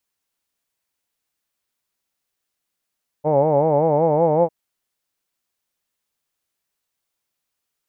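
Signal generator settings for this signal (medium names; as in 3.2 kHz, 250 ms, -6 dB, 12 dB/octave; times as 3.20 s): formant vowel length 1.25 s, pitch 145 Hz, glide +2 st, vibrato depth 1.2 st, F1 540 Hz, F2 860 Hz, F3 2.2 kHz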